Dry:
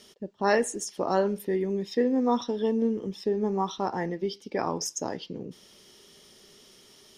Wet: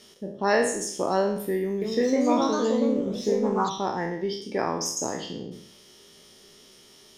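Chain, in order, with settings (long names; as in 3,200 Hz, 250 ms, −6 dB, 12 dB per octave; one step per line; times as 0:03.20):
peak hold with a decay on every bin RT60 0.63 s
0:01.62–0:03.73: delay with pitch and tempo change per echo 195 ms, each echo +2 semitones, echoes 2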